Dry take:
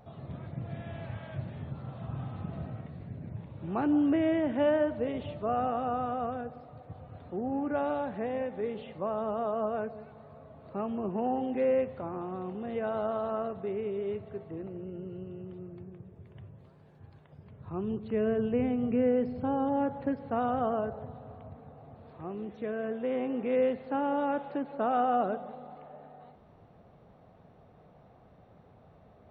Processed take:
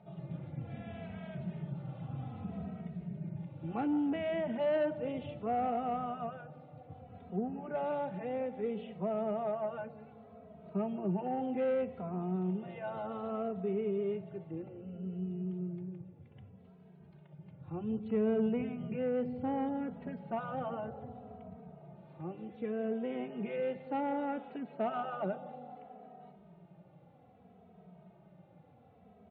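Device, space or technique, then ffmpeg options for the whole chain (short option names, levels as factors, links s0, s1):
barber-pole flanger into a guitar amplifier: -filter_complex "[0:a]asplit=2[s0][s1];[s1]adelay=2.8,afreqshift=-0.64[s2];[s0][s2]amix=inputs=2:normalize=1,asoftclip=type=tanh:threshold=0.0596,highpass=110,equalizer=f=110:t=q:w=4:g=-6,equalizer=f=180:t=q:w=4:g=9,equalizer=f=280:t=q:w=4:g=-4,equalizer=f=530:t=q:w=4:g=-3,equalizer=f=1100:t=q:w=4:g=-8,equalizer=f=1700:t=q:w=4:g=-6,lowpass=f=3400:w=0.5412,lowpass=f=3400:w=1.3066,volume=1.19"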